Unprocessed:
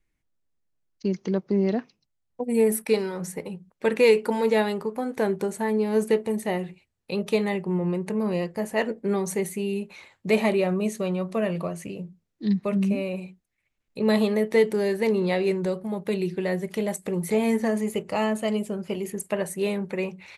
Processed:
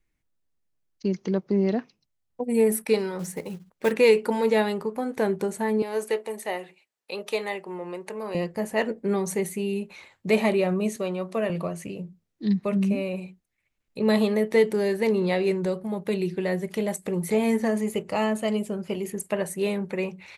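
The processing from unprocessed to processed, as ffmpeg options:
-filter_complex "[0:a]asettb=1/sr,asplit=3[a][b][c];[a]atrim=end=3.194[d];[b]atrim=start=3.19:end=3.92,asetpts=PTS-STARTPTS,afade=t=in:d=0.004:c=qsin,afade=t=out:st=0.726:d=0.004:c=qsin,acrusher=bits=5:mode=log:mix=0:aa=0.000001[e];[c]atrim=start=3.916[f];[d][e]acrossfade=d=0.004:c1=hsin:c2=qsin[g];[g][f]acrossfade=d=0.004:c1=qsin:c2=hsin,asettb=1/sr,asplit=3[h][i][j];[h]atrim=end=5.824[k];[i]atrim=start=5.82:end=8.35,asetpts=PTS-STARTPTS,afade=t=in:d=0.004:c=qsin,afade=t=out:st=2.526:d=0.004:c=qsin,highpass=500[l];[j]atrim=start=8.346[m];[k][l]acrossfade=d=0.004:c1=hsin:c2=qsin[n];[n][m]acrossfade=d=0.004:c1=qsin:c2=hsin,asettb=1/sr,asplit=3[o][p][q];[o]atrim=end=10.964[r];[p]atrim=start=10.96:end=11.5,asetpts=PTS-STARTPTS,afade=t=in:d=0.004:c=qsin,afade=t=out:st=0.536:d=0.004:c=qsin,highpass=230[s];[q]atrim=start=11.496[t];[r][s]acrossfade=d=0.004:c1=hsin:c2=qsin[u];[u][t]acrossfade=d=0.004:c1=qsin:c2=hsin"

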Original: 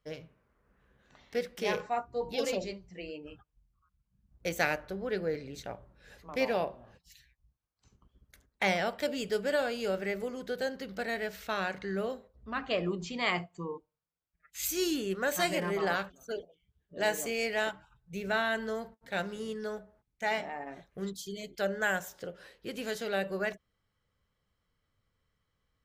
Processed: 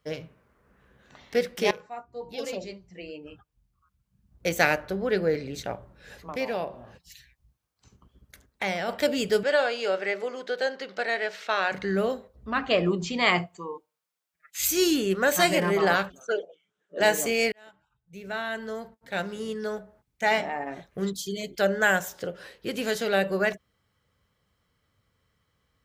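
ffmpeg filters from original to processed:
-filter_complex "[0:a]asplit=3[a][b][c];[a]afade=t=out:st=6.31:d=0.02[d];[b]acompressor=threshold=-47dB:ratio=1.5:attack=3.2:release=140:knee=1:detection=peak,afade=t=in:st=6.31:d=0.02,afade=t=out:st=8.88:d=0.02[e];[c]afade=t=in:st=8.88:d=0.02[f];[d][e][f]amix=inputs=3:normalize=0,asettb=1/sr,asplit=3[g][h][i];[g]atrim=end=9.434[j];[h]atrim=start=9.43:end=11.72,asetpts=PTS-STARTPTS,afade=t=in:d=0.004:c=qsin,afade=t=out:st=2.286:d=0.004:c=qsin,highpass=470,lowpass=5.5k[k];[i]atrim=start=11.716[l];[j][k]acrossfade=d=0.004:c1=hsin:c2=qsin[m];[m][l]acrossfade=d=0.004:c1=qsin:c2=hsin,asettb=1/sr,asplit=3[n][o][p];[n]atrim=end=13.564[q];[o]atrim=start=13.56:end=14.59,asetpts=PTS-STARTPTS,afade=t=in:d=0.004:c=qsin,afade=t=out:st=1.026:d=0.004:c=qsin,highpass=f=770:p=1[r];[p]atrim=start=14.586[s];[q][r]acrossfade=d=0.004:c1=hsin:c2=qsin[t];[t][s]acrossfade=d=0.004:c1=qsin:c2=hsin,asplit=3[u][v][w];[u]afade=t=out:st=16.19:d=0.02[x];[v]highpass=f=240:w=0.5412,highpass=f=240:w=1.3066,equalizer=f=260:t=q:w=4:g=-8,equalizer=f=520:t=q:w=4:g=5,equalizer=f=1.4k:t=q:w=4:g=9,equalizer=f=4.6k:t=q:w=4:g=-8,lowpass=f=7.9k:w=0.5412,lowpass=f=7.9k:w=1.3066,afade=t=in:st=16.19:d=0.02,afade=t=out:st=16.99:d=0.02[y];[w]afade=t=in:st=16.99:d=0.02[z];[x][y][z]amix=inputs=3:normalize=0,asplit=3[aa][ab][ac];[aa]atrim=end=1.71,asetpts=PTS-STARTPTS,afade=t=out:st=1.706:d=0.004:c=hsin:silence=0.125893[ad];[ab]atrim=start=1.71:end=17.52,asetpts=PTS-STARTPTS,afade=t=in:d=3.24:silence=0.125893,afade=t=out:st=15.806:d=0.004:c=hsin[ae];[ac]atrim=start=17.52,asetpts=PTS-STARTPTS,afade=t=in:d=2.81[af];[ad][ae][af]concat=n=3:v=0:a=1,highpass=55,volume=8dB"

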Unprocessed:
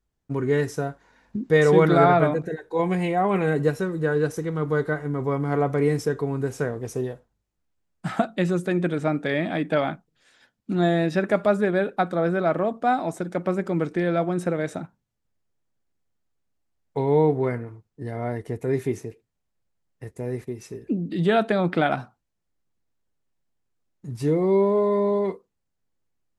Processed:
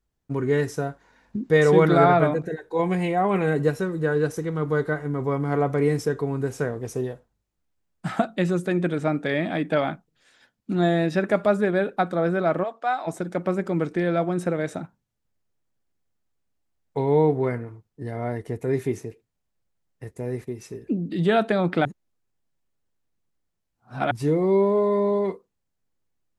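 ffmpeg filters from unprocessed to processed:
-filter_complex "[0:a]asplit=3[a][b][c];[a]afade=t=out:st=12.63:d=0.02[d];[b]highpass=730,lowpass=6.4k,afade=t=in:st=12.63:d=0.02,afade=t=out:st=13.06:d=0.02[e];[c]afade=t=in:st=13.06:d=0.02[f];[d][e][f]amix=inputs=3:normalize=0,asplit=3[g][h][i];[g]atrim=end=21.852[j];[h]atrim=start=21.848:end=24.112,asetpts=PTS-STARTPTS,areverse[k];[i]atrim=start=24.108[l];[j][k]acrossfade=d=0.004:c1=hsin:c2=hsin[m];[m][l]acrossfade=d=0.004:c1=hsin:c2=hsin"

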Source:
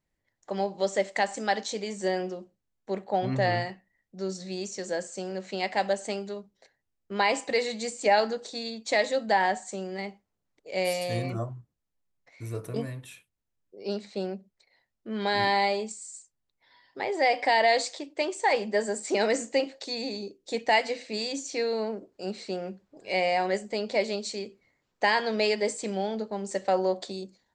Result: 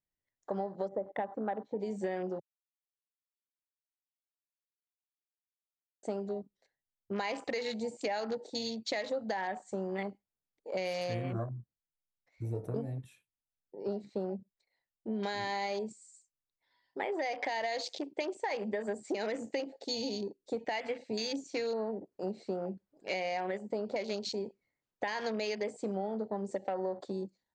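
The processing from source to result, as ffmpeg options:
-filter_complex "[0:a]asplit=3[a][b][c];[a]afade=t=out:st=0.87:d=0.02[d];[b]lowpass=1k,afade=t=in:st=0.87:d=0.02,afade=t=out:st=1.79:d=0.02[e];[c]afade=t=in:st=1.79:d=0.02[f];[d][e][f]amix=inputs=3:normalize=0,asplit=3[g][h][i];[g]atrim=end=2.4,asetpts=PTS-STARTPTS,afade=t=out:st=2.396:d=0.004:c=hsin[j];[h]atrim=start=2.4:end=6.03,asetpts=PTS-STARTPTS,volume=0[k];[i]atrim=start=6.03,asetpts=PTS-STARTPTS,afade=t=in:d=0.004:c=hsin[l];[j][k][l]concat=n=3:v=0:a=1,afwtdn=0.0112,alimiter=limit=-19.5dB:level=0:latency=1:release=99,acompressor=threshold=-33dB:ratio=6,volume=1.5dB"

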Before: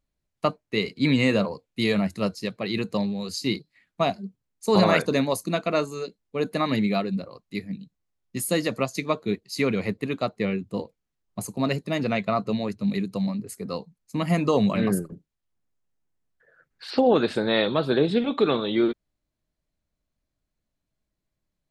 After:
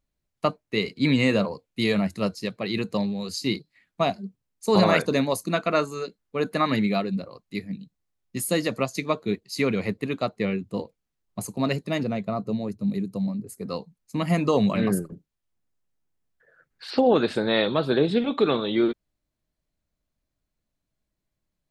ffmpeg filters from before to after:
-filter_complex "[0:a]asettb=1/sr,asplit=3[a][b][c];[a]atrim=end=5.484[d];[b]atrim=start=5.48:end=6.88,asetpts=PTS-STARTPTS,afade=t=in:d=0.004:c=qsin,afade=t=out:st=1.396:d=0.004:c=qsin,equalizer=f=1.4k:w=1.5:g=5[e];[c]atrim=start=6.876[f];[d][e]acrossfade=d=0.004:c1=hsin:c2=qsin[g];[g][f]acrossfade=d=0.004:c1=qsin:c2=hsin,asettb=1/sr,asplit=3[h][i][j];[h]atrim=end=12.034[k];[i]atrim=start=12.03:end=13.61,asetpts=PTS-STARTPTS,afade=t=in:d=0.004:c=qsin,afade=t=out:st=1.576:d=0.004:c=qsin,equalizer=f=2.4k:w=0.4:g=-11.5[l];[j]atrim=start=13.606[m];[k][l]acrossfade=d=0.004:c1=hsin:c2=qsin[n];[n][m]acrossfade=d=0.004:c1=qsin:c2=hsin"

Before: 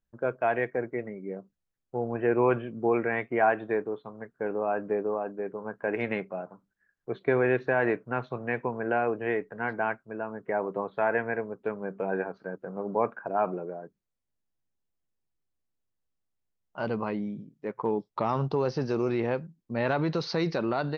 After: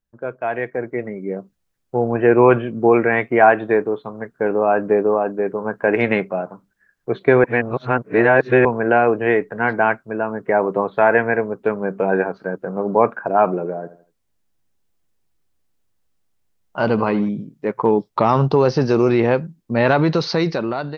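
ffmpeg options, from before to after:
-filter_complex "[0:a]asettb=1/sr,asplit=3[a][b][c];[a]atrim=end=13.534[d];[b]atrim=start=13.53:end=17.29,asetpts=PTS-STARTPTS,afade=t=in:d=0.004:c=qsin,afade=t=out:st=3.756:d=0.004:c=qsin,aecho=1:1:81|162|243:0.168|0.0604|0.0218,atrim=end_sample=165816[e];[c]atrim=start=17.286[f];[d][e]acrossfade=d=0.004:c1=hsin:c2=qsin[g];[g][f]acrossfade=d=0.004:c1=qsin:c2=hsin,asplit=3[h][i][j];[h]atrim=end=7.442[k];[i]atrim=start=7.438:end=8.652,asetpts=PTS-STARTPTS,areverse[l];[j]atrim=start=8.648[m];[k][l]acrossfade=d=0.004:c1=hsin:c2=hsin[n];[n][m]acrossfade=d=0.004:c1=hsin:c2=hsin,dynaudnorm=f=390:g=5:m=11.5dB,volume=1.5dB"

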